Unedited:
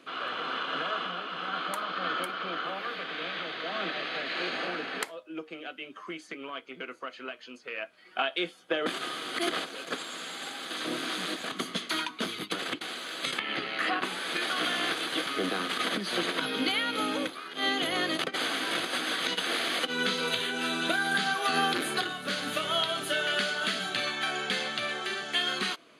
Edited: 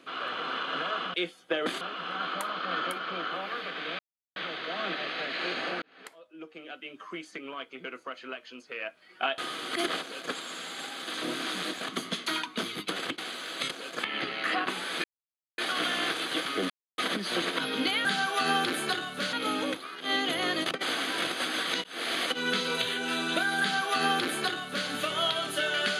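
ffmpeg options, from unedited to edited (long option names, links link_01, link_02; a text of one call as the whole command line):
ffmpeg -i in.wav -filter_complex "[0:a]asplit=14[link_01][link_02][link_03][link_04][link_05][link_06][link_07][link_08][link_09][link_10][link_11][link_12][link_13][link_14];[link_01]atrim=end=1.142[link_15];[link_02]atrim=start=8.338:end=9.012[link_16];[link_03]atrim=start=1.138:end=3.32,asetpts=PTS-STARTPTS,afade=type=out:start_time=2.178:duration=0.004:curve=hsin,apad=pad_dur=0.37[link_17];[link_04]atrim=start=3.32:end=4.78,asetpts=PTS-STARTPTS,afade=type=in:duration=0.004:curve=hsin,afade=type=out:start_time=1.456:duration=0.004:curve=hsin[link_18];[link_05]atrim=start=4.78:end=8.342,asetpts=PTS-STARTPTS,afade=type=in:duration=1.19[link_19];[link_06]atrim=start=9.008:end=13.342[link_20];[link_07]atrim=start=9.648:end=9.932[link_21];[link_08]atrim=start=13.338:end=14.39,asetpts=PTS-STARTPTS,afade=type=out:start_time=1.048:duration=0.004:curve=hsin,apad=pad_dur=0.54[link_22];[link_09]atrim=start=14.39:end=15.51,asetpts=PTS-STARTPTS,afade=type=in:duration=0.004:curve=hsin,afade=type=out:start_time=1.116:duration=0.004:curve=hsin[link_23];[link_10]atrim=start=15.51:end=15.79,asetpts=PTS-STARTPTS,volume=0[link_24];[link_11]atrim=start=15.79:end=16.862,asetpts=PTS-STARTPTS,afade=type=in:duration=0.004:curve=hsin[link_25];[link_12]atrim=start=21.128:end=22.412[link_26];[link_13]atrim=start=16.858:end=19.37,asetpts=PTS-STARTPTS,afade=type=out:start_time=2.508:duration=0.004:curve=hsin[link_27];[link_14]atrim=start=19.37,asetpts=PTS-STARTPTS,afade=type=in:duration=0.28[link_28];[link_15][link_16]acrossfade=duration=0.004:curve1=hsin:curve2=hsin[link_29];[link_17][link_18][link_19]concat=n=3:v=0:a=1[link_30];[link_29][link_30]acrossfade=duration=0.004:curve1=hsin:curve2=hsin[link_31];[link_31][link_20]acrossfade=duration=0.004:curve1=hsin:curve2=hsin[link_32];[link_32][link_21]acrossfade=duration=0.004:curve1=hsin:curve2=hsin[link_33];[link_22][link_23][link_24][link_25]concat=n=4:v=0:a=1[link_34];[link_33][link_34]acrossfade=duration=0.004:curve1=hsin:curve2=hsin[link_35];[link_35][link_26]acrossfade=duration=0.004:curve1=hsin:curve2=hsin[link_36];[link_27][link_28]concat=n=2:v=0:a=1[link_37];[link_36][link_37]acrossfade=duration=0.004:curve1=hsin:curve2=hsin" out.wav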